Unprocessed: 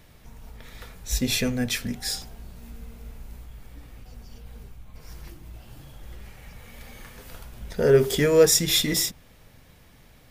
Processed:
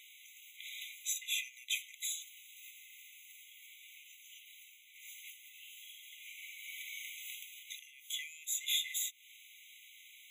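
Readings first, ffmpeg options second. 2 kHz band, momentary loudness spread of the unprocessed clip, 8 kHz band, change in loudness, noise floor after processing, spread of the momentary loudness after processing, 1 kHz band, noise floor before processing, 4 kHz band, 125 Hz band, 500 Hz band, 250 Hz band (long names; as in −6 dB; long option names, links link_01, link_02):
−9.5 dB, 13 LU, −10.5 dB, −18.0 dB, −59 dBFS, 19 LU, below −40 dB, −53 dBFS, −10.5 dB, below −40 dB, below −40 dB, below −40 dB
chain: -af "acompressor=threshold=-35dB:ratio=8,afftfilt=real='re*eq(mod(floor(b*sr/1024/2000),2),1)':imag='im*eq(mod(floor(b*sr/1024/2000),2),1)':win_size=1024:overlap=0.75,volume=6dB"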